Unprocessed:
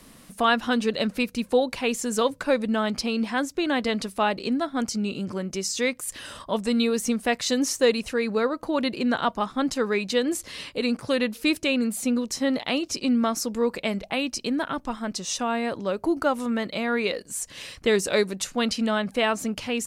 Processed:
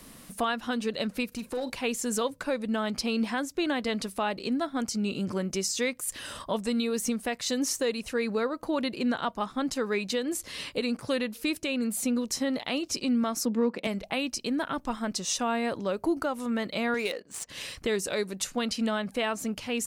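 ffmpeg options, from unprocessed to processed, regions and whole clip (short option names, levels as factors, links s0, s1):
-filter_complex "[0:a]asettb=1/sr,asplit=3[s0][s1][s2];[s0]atrim=end=1.274[s3];[s1]atrim=start=1.27:end=1.7,asetpts=PTS-STARTPTS,afade=t=in:d=0.004:c=qsin,afade=t=out:st=0.426:d=0.004:c=qsin,acompressor=threshold=0.0447:ratio=4:attack=3.2:release=140:knee=1:detection=peak,asoftclip=type=hard:threshold=0.0531,asplit=2[s4][s5];[s5]adelay=44,volume=0.224[s6];[s4][s6]amix=inputs=2:normalize=0,atrim=end_sample=18963[s7];[s2]atrim=start=1.696[s8];[s3][s7]acrossfade=d=0.004:c1=hsin:c2=qsin[s9];[s9][s8]acrossfade=d=0.004:c1=qsin:c2=hsin,asettb=1/sr,asplit=3[s10][s11][s12];[s10]atrim=end=13.454[s13];[s11]atrim=start=13.45:end=13.87,asetpts=PTS-STARTPTS,afade=t=in:d=0.004:c=qsin,afade=t=out:st=0.416:d=0.004:c=qsin,highpass=f=220:t=q:w=2,adynamicsmooth=sensitivity=2.5:basefreq=3000[s14];[s12]atrim=start=13.866[s15];[s13][s14]acrossfade=d=0.004:c1=hsin:c2=qsin[s16];[s16][s15]acrossfade=d=0.004:c1=qsin:c2=hsin,asettb=1/sr,asplit=3[s17][s18][s19];[s17]atrim=end=16.944[s20];[s18]atrim=start=16.94:end=17.49,asetpts=PTS-STARTPTS,afade=t=in:d=0.004:c=qsin,afade=t=out:st=0.546:d=0.004:c=qsin,highpass=f=280:p=1,adynamicsmooth=sensitivity=6.5:basefreq=2400[s21];[s19]atrim=start=17.486[s22];[s20][s21]acrossfade=d=0.004:c1=hsin:c2=qsin[s23];[s23][s22]acrossfade=d=0.004:c1=qsin:c2=hsin,highshelf=f=11000:g=6,alimiter=limit=0.126:level=0:latency=1:release=498"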